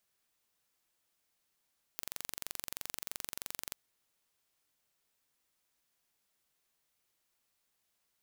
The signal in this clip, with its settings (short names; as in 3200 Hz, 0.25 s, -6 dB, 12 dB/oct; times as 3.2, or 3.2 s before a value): pulse train 23.1/s, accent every 0, -11.5 dBFS 1.77 s